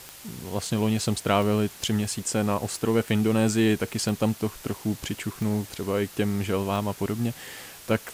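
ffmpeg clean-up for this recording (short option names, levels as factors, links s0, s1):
-af "adeclick=t=4,afftdn=nr=26:nf=-45"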